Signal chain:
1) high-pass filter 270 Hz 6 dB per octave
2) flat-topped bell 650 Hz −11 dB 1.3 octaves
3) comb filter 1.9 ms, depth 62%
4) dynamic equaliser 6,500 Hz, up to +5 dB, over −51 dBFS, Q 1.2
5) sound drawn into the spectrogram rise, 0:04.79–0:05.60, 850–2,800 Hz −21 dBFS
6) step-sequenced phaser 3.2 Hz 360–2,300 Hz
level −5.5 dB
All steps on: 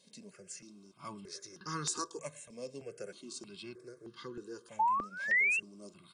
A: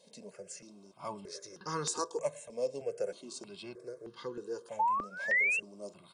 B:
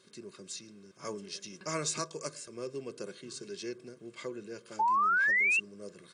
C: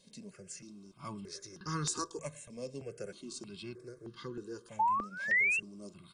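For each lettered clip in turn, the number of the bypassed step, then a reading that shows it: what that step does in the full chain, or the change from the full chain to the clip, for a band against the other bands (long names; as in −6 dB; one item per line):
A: 2, 500 Hz band +9.0 dB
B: 6, 500 Hz band +2.0 dB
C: 1, change in momentary loudness spread −2 LU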